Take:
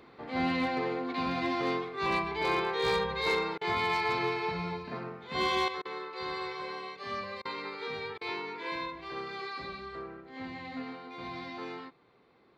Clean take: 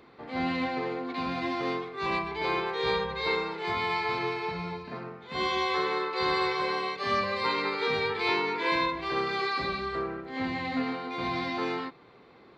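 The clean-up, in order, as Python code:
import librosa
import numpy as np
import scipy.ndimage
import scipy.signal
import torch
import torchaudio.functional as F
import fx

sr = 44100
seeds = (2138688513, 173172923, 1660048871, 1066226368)

y = fx.fix_declip(x, sr, threshold_db=-22.0)
y = fx.fix_interpolate(y, sr, at_s=(3.58, 5.82, 7.42, 8.18), length_ms=31.0)
y = fx.fix_level(y, sr, at_s=5.68, step_db=9.5)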